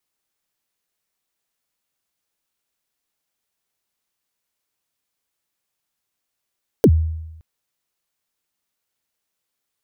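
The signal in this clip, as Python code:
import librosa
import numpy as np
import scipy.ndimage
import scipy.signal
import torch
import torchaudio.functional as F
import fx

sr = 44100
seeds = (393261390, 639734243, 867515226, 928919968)

y = fx.drum_kick(sr, seeds[0], length_s=0.57, level_db=-6, start_hz=530.0, end_hz=80.0, sweep_ms=60.0, decay_s=0.97, click=True)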